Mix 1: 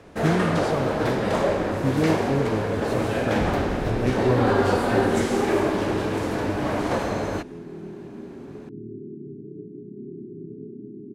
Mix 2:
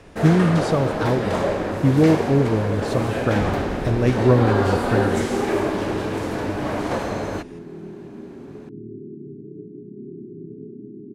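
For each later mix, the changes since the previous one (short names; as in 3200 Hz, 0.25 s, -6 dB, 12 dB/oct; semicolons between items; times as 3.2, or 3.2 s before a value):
speech +4.0 dB; reverb: on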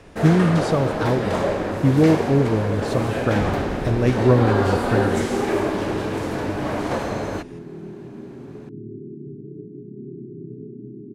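second sound: add bell 130 Hz +9.5 dB 0.24 oct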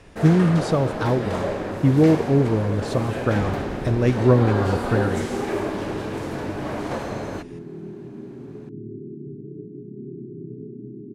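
first sound -4.0 dB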